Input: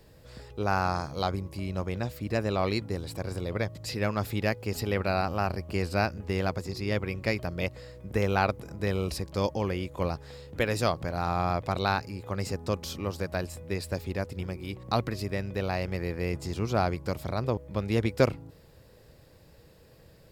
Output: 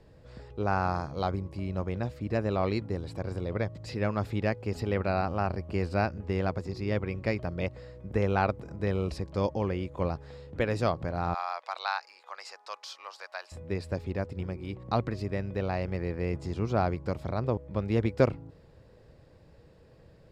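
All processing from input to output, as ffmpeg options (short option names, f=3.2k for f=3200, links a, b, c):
-filter_complex "[0:a]asettb=1/sr,asplit=3[a][b][c];[a]atrim=end=11.344[d];[b]atrim=start=11.34:end=13.52,asetpts=PTS-STARTPTS,afade=t=in:d=0.004:c=qsin,afade=t=out:st=2.176:d=0.004:c=qsin,highpass=f=820:w=0.5412,highpass=f=820:w=1.3066,equalizer=f=4.7k:t=o:w=0.82:g=5.5[e];[c]atrim=start=13.516[f];[d][e]acrossfade=d=0.004:c1=hsin:c2=qsin[g];[g][f]acrossfade=d=0.004:c1=qsin:c2=hsin,lowpass=8.1k,highshelf=f=2.5k:g=-10"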